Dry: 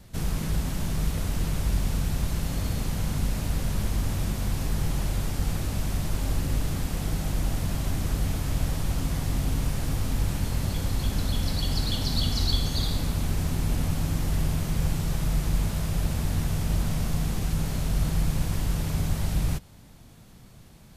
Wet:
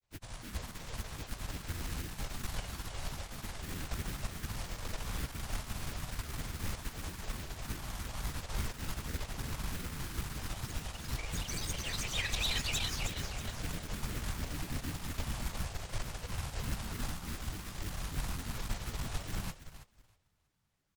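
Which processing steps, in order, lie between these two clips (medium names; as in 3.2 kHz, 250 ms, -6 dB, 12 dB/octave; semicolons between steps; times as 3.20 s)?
resonant low shelf 690 Hz -8 dB, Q 1.5; granulator, pitch spread up and down by 12 st; valve stage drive 29 dB, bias 0.25; on a send: frequency-shifting echo 319 ms, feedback 49%, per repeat -39 Hz, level -4.5 dB; on the sum: upward expansion 2.5:1, over -49 dBFS; trim +2 dB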